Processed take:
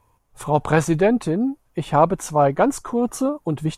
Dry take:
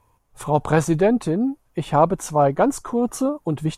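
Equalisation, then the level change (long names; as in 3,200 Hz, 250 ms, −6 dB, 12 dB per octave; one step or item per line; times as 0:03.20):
dynamic equaliser 2,200 Hz, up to +4 dB, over −35 dBFS, Q 1
0.0 dB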